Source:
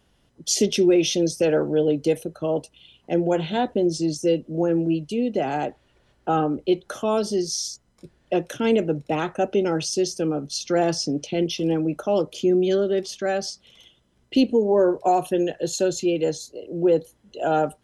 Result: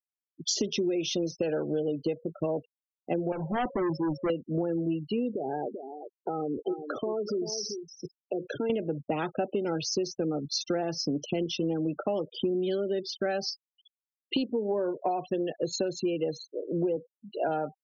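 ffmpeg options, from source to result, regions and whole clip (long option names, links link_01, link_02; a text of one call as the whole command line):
ffmpeg -i in.wav -filter_complex "[0:a]asettb=1/sr,asplit=3[link_01][link_02][link_03];[link_01]atrim=end=3.324[link_04];[link_02]atrim=start=3.32:end=4.3,asetpts=PTS-STARTPTS,afade=type=in:duration=0.004:curve=qsin,afade=type=out:start_time=0.976:duration=0.004:curve=qsin,aeval=exprs='val(0)+0.00447*sin(2*PI*550*n/s)':channel_layout=same,highshelf=frequency=1600:width_type=q:width=3:gain=-8.5,volume=25.5dB,asoftclip=hard,volume=-25.5dB[link_05];[link_03]atrim=start=4.296[link_06];[link_04][link_05]acrossfade=duration=0.004:curve1=hsin:curve2=qsin[link_07];[link_07][link_06]acrossfade=duration=0.004:curve1=qsin:curve2=hsin,asettb=1/sr,asplit=3[link_08][link_09][link_10];[link_08]atrim=end=5.324[link_11];[link_09]atrim=start=5.32:end=8.7,asetpts=PTS-STARTPTS,afade=type=in:duration=0.004:curve=qsin,afade=type=out:start_time=3.376:duration=0.004:curve=qsin,equalizer=frequency=420:width=3:gain=9.5,acompressor=threshold=-29dB:ratio=5:attack=3.2:release=140:knee=1:detection=peak,aecho=1:1:388:0.355,atrim=end_sample=149058[link_12];[link_10]atrim=start=8.696[link_13];[link_11][link_12]acrossfade=duration=0.004:curve1=hsin:curve2=qsin[link_14];[link_14][link_13]acrossfade=duration=0.004:curve1=qsin:curve2=hsin,asettb=1/sr,asplit=3[link_15][link_16][link_17];[link_15]atrim=end=12.554[link_18];[link_16]atrim=start=12.55:end=15.3,asetpts=PTS-STARTPTS,afade=type=in:duration=0.004:curve=qsin,afade=type=out:start_time=2.746:duration=0.004:curve=qsin,lowpass=frequency=5800:width=0.5412,lowpass=frequency=5800:width=1.3066,highshelf=frequency=4500:gain=6.5[link_19];[link_17]atrim=start=15.296[link_20];[link_18][link_19]acrossfade=duration=0.004:curve1=hsin:curve2=qsin[link_21];[link_21][link_20]acrossfade=duration=0.004:curve1=qsin:curve2=hsin,asettb=1/sr,asplit=3[link_22][link_23][link_24];[link_22]atrim=end=16.964[link_25];[link_23]atrim=start=16.96:end=17.49,asetpts=PTS-STARTPTS,afade=type=in:duration=0.004:curve=qsin,afade=type=out:start_time=0.526:duration=0.004:curve=qsin,acompressor=mode=upward:threshold=-36dB:ratio=2.5:attack=3.2:release=140:knee=2.83:detection=peak,highpass=130,lowpass=4800[link_26];[link_24]atrim=start=17.486[link_27];[link_25][link_26]acrossfade=duration=0.004:curve1=hsin:curve2=qsin[link_28];[link_28][link_27]acrossfade=duration=0.004:curve1=qsin:curve2=hsin,lowpass=frequency=5900:width=0.5412,lowpass=frequency=5900:width=1.3066,afftfilt=real='re*gte(hypot(re,im),0.0282)':imag='im*gte(hypot(re,im),0.0282)':win_size=1024:overlap=0.75,acompressor=threshold=-27dB:ratio=12,volume=1.5dB" out.wav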